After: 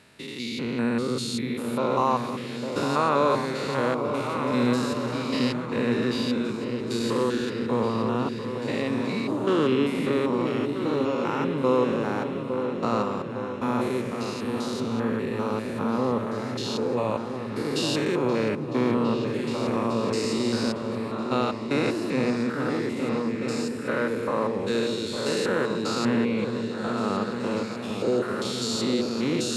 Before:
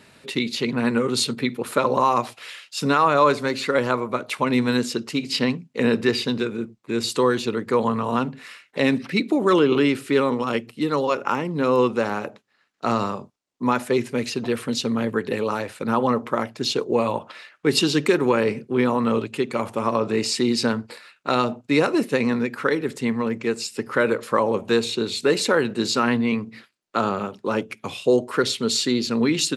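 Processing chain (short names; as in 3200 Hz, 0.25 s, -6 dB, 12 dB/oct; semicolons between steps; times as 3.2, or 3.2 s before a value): stepped spectrum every 0.2 s; repeats that get brighter 0.428 s, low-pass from 200 Hz, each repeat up 2 oct, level -3 dB; gain -2.5 dB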